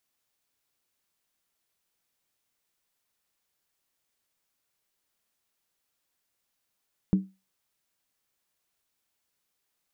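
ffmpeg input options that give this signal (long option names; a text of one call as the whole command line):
ffmpeg -f lavfi -i "aevalsrc='0.178*pow(10,-3*t/0.26)*sin(2*PI*191*t)+0.0501*pow(10,-3*t/0.206)*sin(2*PI*304.5*t)+0.0141*pow(10,-3*t/0.178)*sin(2*PI*408*t)+0.00398*pow(10,-3*t/0.172)*sin(2*PI*438.5*t)+0.00112*pow(10,-3*t/0.16)*sin(2*PI*506.7*t)':duration=0.63:sample_rate=44100" out.wav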